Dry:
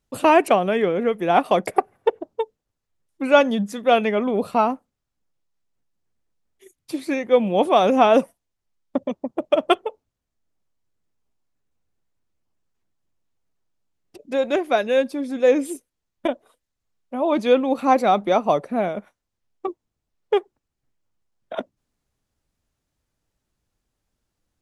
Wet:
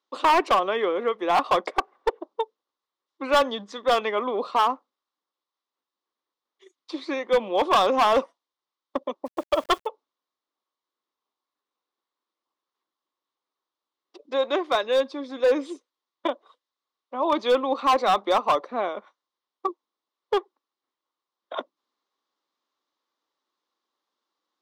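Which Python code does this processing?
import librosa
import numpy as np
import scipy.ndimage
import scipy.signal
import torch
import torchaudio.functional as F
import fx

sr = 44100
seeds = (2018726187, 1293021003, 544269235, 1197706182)

y = fx.cabinet(x, sr, low_hz=340.0, low_slope=24, high_hz=5400.0, hz=(430.0, 660.0, 1100.0, 1600.0, 2500.0, 3700.0), db=(-4, -6, 10, -4, -6, 5))
y = np.clip(10.0 ** (14.5 / 20.0) * y, -1.0, 1.0) / 10.0 ** (14.5 / 20.0)
y = fx.quant_dither(y, sr, seeds[0], bits=8, dither='none', at=(9.25, 9.86), fade=0.02)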